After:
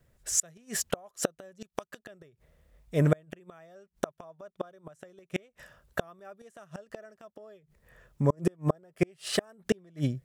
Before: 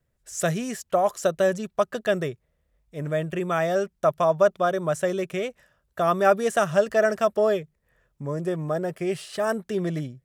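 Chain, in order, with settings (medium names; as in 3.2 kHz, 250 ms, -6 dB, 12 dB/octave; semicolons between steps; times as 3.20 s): 1.61–2.02 s: treble shelf 2 kHz +10 dB; inverted gate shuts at -20 dBFS, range -37 dB; trim +8 dB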